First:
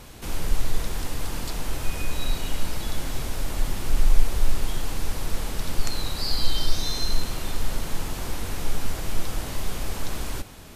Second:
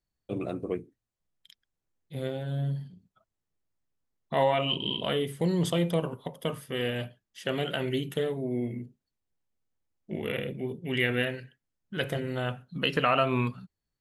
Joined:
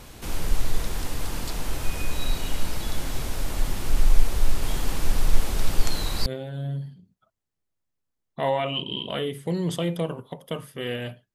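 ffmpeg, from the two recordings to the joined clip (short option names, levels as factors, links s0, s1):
-filter_complex "[0:a]asplit=3[s0][s1][s2];[s0]afade=t=out:st=4.61:d=0.02[s3];[s1]aecho=1:1:1166:0.668,afade=t=in:st=4.61:d=0.02,afade=t=out:st=6.26:d=0.02[s4];[s2]afade=t=in:st=6.26:d=0.02[s5];[s3][s4][s5]amix=inputs=3:normalize=0,apad=whole_dur=11.34,atrim=end=11.34,atrim=end=6.262[s6];[1:a]atrim=start=2.198:end=7.28[s7];[s6][s7]acrossfade=d=0.004:c1=hsin:c2=hsin"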